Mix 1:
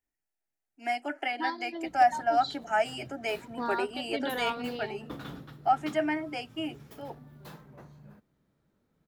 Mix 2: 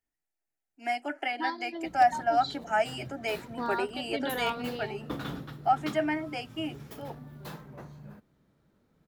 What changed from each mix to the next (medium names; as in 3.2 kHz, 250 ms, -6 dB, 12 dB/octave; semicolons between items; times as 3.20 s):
background +5.0 dB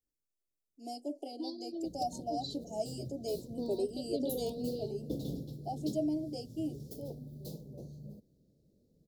master: add elliptic band-stop 540–4500 Hz, stop band 80 dB